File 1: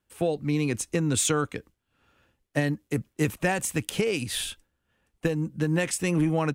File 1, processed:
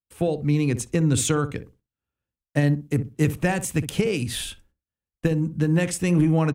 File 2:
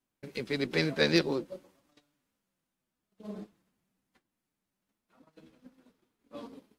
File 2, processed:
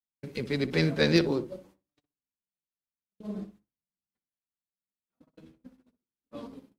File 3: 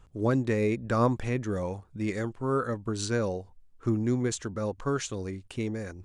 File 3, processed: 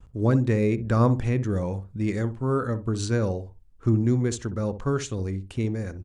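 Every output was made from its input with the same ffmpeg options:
-filter_complex "[0:a]agate=range=-27dB:threshold=-59dB:ratio=16:detection=peak,equalizer=f=61:w=0.3:g=9,asplit=2[a][b];[b]adelay=62,lowpass=f=860:p=1,volume=-10.5dB,asplit=2[c][d];[d]adelay=62,lowpass=f=860:p=1,volume=0.21,asplit=2[e][f];[f]adelay=62,lowpass=f=860:p=1,volume=0.21[g];[a][c][e][g]amix=inputs=4:normalize=0"

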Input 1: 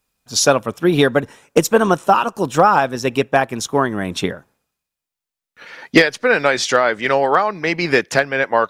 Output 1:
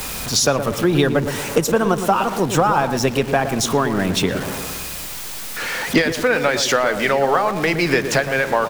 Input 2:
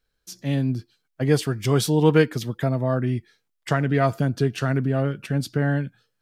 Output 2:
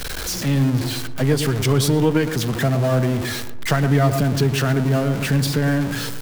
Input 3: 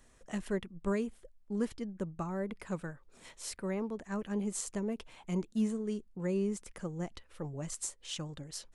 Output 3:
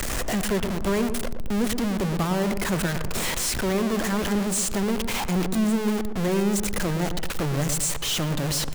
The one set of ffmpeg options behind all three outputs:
-filter_complex "[0:a]aeval=exprs='val(0)+0.5*0.0596*sgn(val(0))':c=same,acrossover=split=120[a][b];[b]acompressor=threshold=-20dB:ratio=2.5[c];[a][c]amix=inputs=2:normalize=0,asplit=2[d][e];[e]adelay=116,lowpass=f=900:p=1,volume=-7dB,asplit=2[f][g];[g]adelay=116,lowpass=f=900:p=1,volume=0.5,asplit=2[h][i];[i]adelay=116,lowpass=f=900:p=1,volume=0.5,asplit=2[j][k];[k]adelay=116,lowpass=f=900:p=1,volume=0.5,asplit=2[l][m];[m]adelay=116,lowpass=f=900:p=1,volume=0.5,asplit=2[n][o];[o]adelay=116,lowpass=f=900:p=1,volume=0.5[p];[f][h][j][l][n][p]amix=inputs=6:normalize=0[q];[d][q]amix=inputs=2:normalize=0,volume=3dB"

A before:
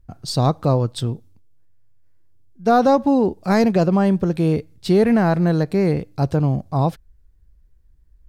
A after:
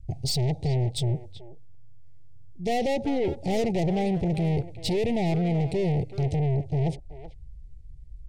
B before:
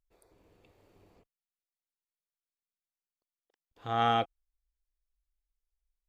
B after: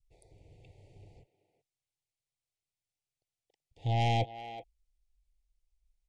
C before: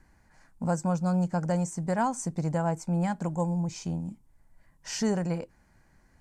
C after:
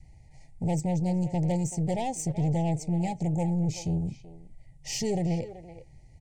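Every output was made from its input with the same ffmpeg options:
-filter_complex "[0:a]adynamicequalizer=threshold=0.0224:dfrequency=400:dqfactor=1.8:tfrequency=400:tqfactor=1.8:attack=5:release=100:ratio=0.375:range=2.5:mode=boostabove:tftype=bell,aresample=22050,aresample=44100,lowshelf=f=170:t=q:w=3:g=7,asplit=2[a][b];[b]acompressor=threshold=-22dB:ratio=6,volume=-1dB[c];[a][c]amix=inputs=2:normalize=0,aeval=exprs='(tanh(11.2*val(0)+0.3)-tanh(0.3))/11.2':c=same,asuperstop=centerf=1300:order=12:qfactor=1.2,acontrast=22,asplit=2[d][e];[e]adelay=380,highpass=300,lowpass=3.4k,asoftclip=type=hard:threshold=-18dB,volume=-12dB[f];[d][f]amix=inputs=2:normalize=0,volume=-7dB"

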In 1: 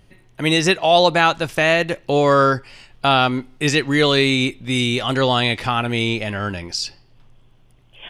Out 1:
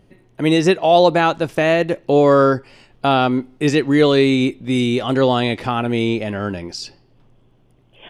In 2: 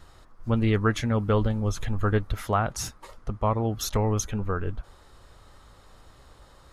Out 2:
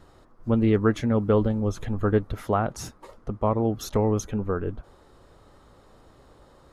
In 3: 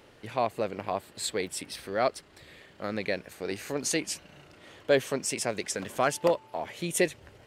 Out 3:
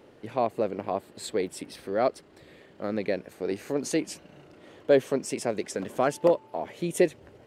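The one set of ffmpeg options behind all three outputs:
-af "equalizer=f=330:t=o:w=3:g=11,volume=-6dB"

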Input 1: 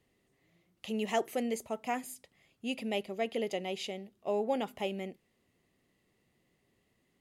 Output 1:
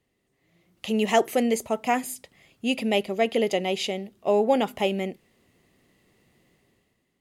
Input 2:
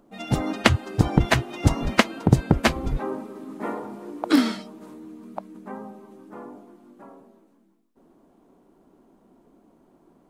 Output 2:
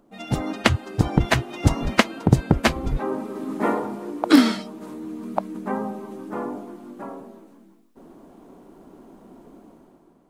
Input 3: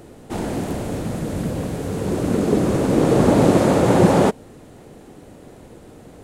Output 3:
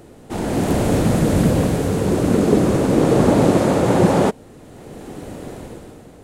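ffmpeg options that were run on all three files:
-af "dynaudnorm=f=110:g=11:m=11.5dB,volume=-1dB"

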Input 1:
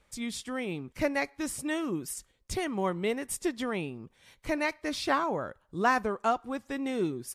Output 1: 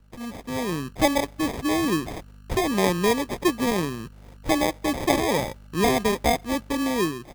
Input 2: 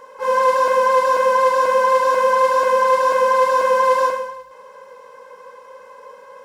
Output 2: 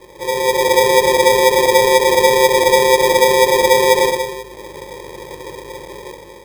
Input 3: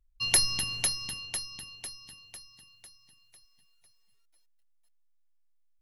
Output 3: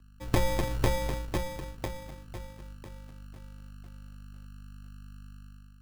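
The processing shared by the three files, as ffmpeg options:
-filter_complex "[0:a]aeval=exprs='val(0)+0.002*(sin(2*PI*50*n/s)+sin(2*PI*2*50*n/s)/2+sin(2*PI*3*50*n/s)/3+sin(2*PI*4*50*n/s)/4+sin(2*PI*5*50*n/s)/5)':c=same,acrossover=split=110|770|2300[a][b][c][d];[c]acompressor=threshold=-36dB:ratio=6[e];[d]bandpass=f=6k:t=q:w=1.3:csg=0[f];[a][b][e][f]amix=inputs=4:normalize=0,acrusher=samples=31:mix=1:aa=0.000001,dynaudnorm=f=210:g=5:m=9dB"

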